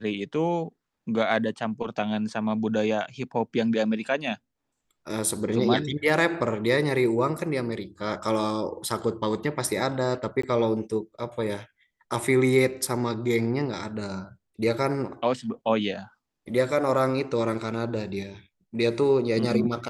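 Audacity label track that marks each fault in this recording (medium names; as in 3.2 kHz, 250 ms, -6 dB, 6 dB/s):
10.420000	10.430000	dropout 14 ms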